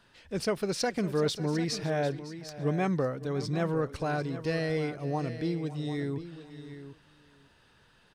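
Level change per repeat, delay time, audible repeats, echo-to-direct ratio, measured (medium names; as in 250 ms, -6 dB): no regular repeats, 556 ms, 3, -11.0 dB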